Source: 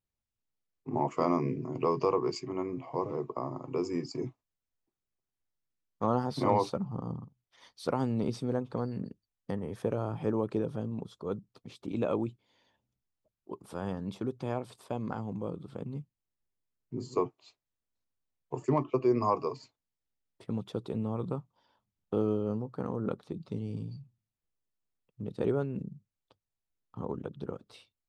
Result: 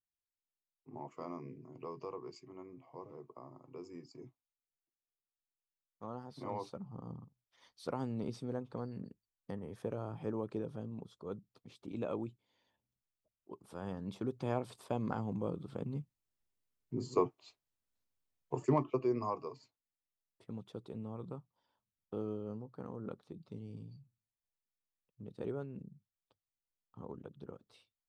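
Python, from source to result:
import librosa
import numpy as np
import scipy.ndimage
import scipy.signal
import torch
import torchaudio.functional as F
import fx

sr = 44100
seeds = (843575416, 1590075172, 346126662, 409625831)

y = fx.gain(x, sr, db=fx.line((6.33, -16.5), (7.21, -8.0), (13.69, -8.0), (14.57, -1.0), (18.63, -1.0), (19.39, -10.5)))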